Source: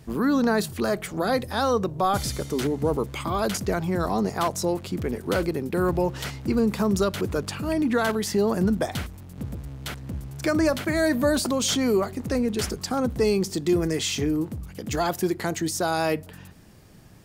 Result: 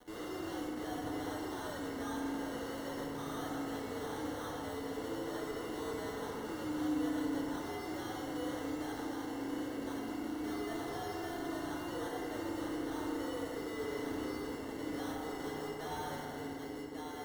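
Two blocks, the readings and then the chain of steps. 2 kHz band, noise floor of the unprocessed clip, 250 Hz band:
−13.5 dB, −44 dBFS, −13.0 dB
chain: in parallel at 0 dB: downward compressor, threshold −33 dBFS, peak gain reduction 14.5 dB
on the sum: single-sideband voice off tune +91 Hz 190–2,600 Hz
harmonic generator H 8 −22 dB, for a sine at −10.5 dBFS
on a send: feedback echo with a low-pass in the loop 1,139 ms, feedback 51%, low-pass 1,700 Hz, level −19 dB
on the sum: decimation without filtering 18×
fuzz pedal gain 46 dB, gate −47 dBFS
noise gate −10 dBFS, range −37 dB
feedback delay network reverb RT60 2.5 s, low-frequency decay 1.35×, high-frequency decay 0.45×, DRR −3 dB
level +4.5 dB

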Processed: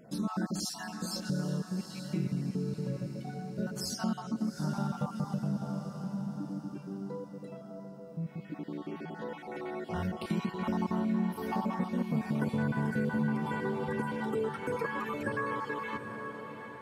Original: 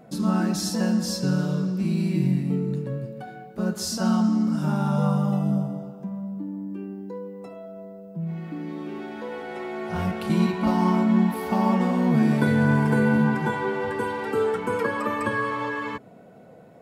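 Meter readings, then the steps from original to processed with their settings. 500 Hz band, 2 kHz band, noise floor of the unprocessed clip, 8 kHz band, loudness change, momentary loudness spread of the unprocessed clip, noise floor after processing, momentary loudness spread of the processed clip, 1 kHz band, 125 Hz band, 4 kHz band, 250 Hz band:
−9.5 dB, −9.0 dB, −48 dBFS, −7.5 dB, −10.5 dB, 15 LU, −47 dBFS, 10 LU, −9.0 dB, −10.0 dB, −7.5 dB, −10.5 dB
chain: time-frequency cells dropped at random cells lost 36%
on a send: feedback delay with all-pass diffusion 772 ms, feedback 48%, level −10 dB
on the sum: downward compressor 2 to 1, threshold −26 dBFS, peak gain reduction 6.5 dB
level −5 dB

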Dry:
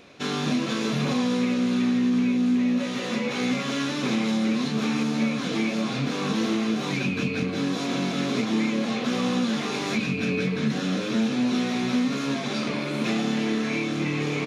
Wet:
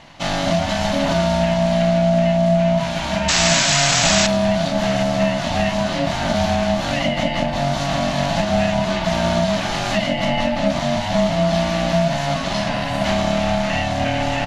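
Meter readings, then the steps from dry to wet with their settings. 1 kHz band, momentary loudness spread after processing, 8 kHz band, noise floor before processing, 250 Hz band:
+12.5 dB, 6 LU, +15.0 dB, −30 dBFS, +1.5 dB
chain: sound drawn into the spectrogram noise, 0:03.28–0:04.27, 990–7,600 Hz −24 dBFS
ring modulation 420 Hz
level +9 dB

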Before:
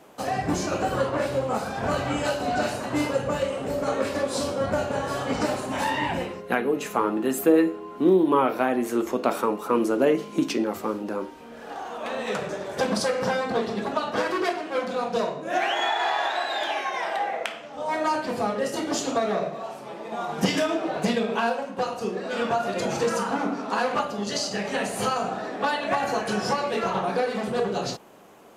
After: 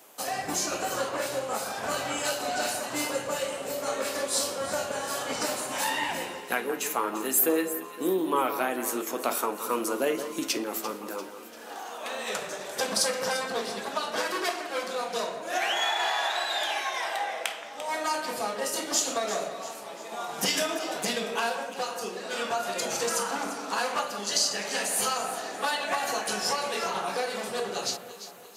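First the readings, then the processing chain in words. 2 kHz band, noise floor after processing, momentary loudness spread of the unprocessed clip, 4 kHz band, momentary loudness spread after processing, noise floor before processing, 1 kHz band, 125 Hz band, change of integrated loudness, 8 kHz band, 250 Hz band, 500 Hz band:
−1.5 dB, −42 dBFS, 7 LU, +2.5 dB, 8 LU, −40 dBFS, −4.0 dB, −13.5 dB, −3.0 dB, +7.5 dB, −9.5 dB, −6.0 dB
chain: RIAA equalisation recording
on a send: delay that swaps between a low-pass and a high-pass 172 ms, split 2,000 Hz, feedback 69%, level −9.5 dB
on the sum: level −4 dB

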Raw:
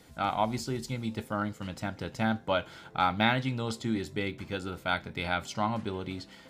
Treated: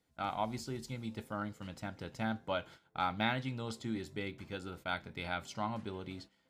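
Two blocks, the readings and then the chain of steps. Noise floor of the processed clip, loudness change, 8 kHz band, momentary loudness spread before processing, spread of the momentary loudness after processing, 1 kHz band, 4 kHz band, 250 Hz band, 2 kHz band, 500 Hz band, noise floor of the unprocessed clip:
−74 dBFS, −7.5 dB, −7.5 dB, 10 LU, 10 LU, −7.5 dB, −7.5 dB, −7.5 dB, −7.5 dB, −7.5 dB, −53 dBFS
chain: noise gate −44 dBFS, range −15 dB
level −7.5 dB

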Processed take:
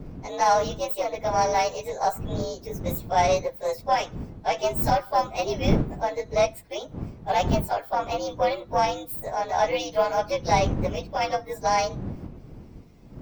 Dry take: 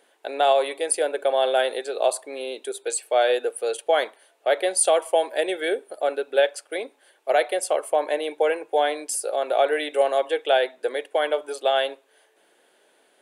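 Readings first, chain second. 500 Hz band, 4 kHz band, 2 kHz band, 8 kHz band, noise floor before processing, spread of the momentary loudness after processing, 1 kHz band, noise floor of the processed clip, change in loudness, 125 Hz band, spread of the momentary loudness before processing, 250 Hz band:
−4.5 dB, −4.0 dB, −4.0 dB, −8.5 dB, −62 dBFS, 10 LU, +2.5 dB, −46 dBFS, −2.0 dB, can't be measured, 10 LU, +6.0 dB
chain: partials spread apart or drawn together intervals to 119%
wind on the microphone 200 Hz −33 dBFS
harmonic generator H 6 −27 dB, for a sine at −7.5 dBFS

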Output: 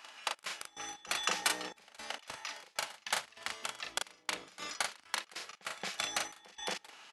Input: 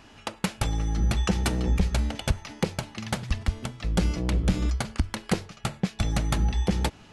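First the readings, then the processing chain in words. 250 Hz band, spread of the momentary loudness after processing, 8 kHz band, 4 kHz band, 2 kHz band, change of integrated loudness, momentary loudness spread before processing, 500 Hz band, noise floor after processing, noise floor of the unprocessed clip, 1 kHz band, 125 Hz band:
−26.0 dB, 10 LU, −1.0 dB, −1.5 dB, −1.5 dB, −9.5 dB, 7 LU, −12.5 dB, −66 dBFS, −52 dBFS, −4.5 dB, −37.0 dB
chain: high-pass filter 940 Hz 12 dB per octave
gate pattern "xx.x.x.xxxx..x." 98 BPM −24 dB
double-tracking delay 39 ms −4 dB
echo ahead of the sound 224 ms −20 dB

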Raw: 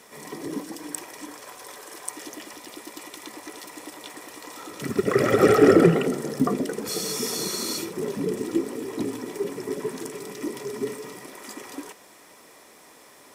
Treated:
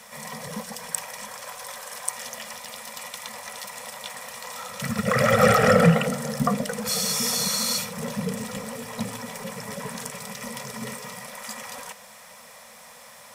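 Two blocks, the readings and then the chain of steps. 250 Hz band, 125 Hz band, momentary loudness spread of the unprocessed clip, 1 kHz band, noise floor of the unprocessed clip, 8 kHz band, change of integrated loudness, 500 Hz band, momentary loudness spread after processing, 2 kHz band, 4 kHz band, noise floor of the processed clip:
−3.0 dB, +4.0 dB, 21 LU, +4.5 dB, −51 dBFS, +5.0 dB, −1.5 dB, −3.0 dB, 19 LU, +5.0 dB, +5.0 dB, −47 dBFS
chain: elliptic band-stop filter 230–490 Hz, stop band 40 dB
level +5 dB

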